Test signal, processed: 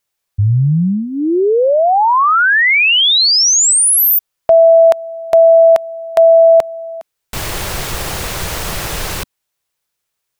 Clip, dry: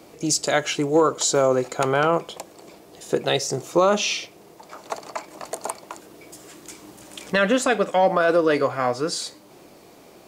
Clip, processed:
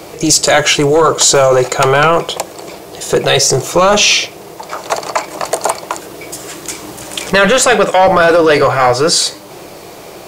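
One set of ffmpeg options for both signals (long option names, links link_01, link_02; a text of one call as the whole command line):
ffmpeg -i in.wav -af "apsyclip=21dB,equalizer=frequency=250:width_type=o:width=0.39:gain=-13,volume=-3.5dB" out.wav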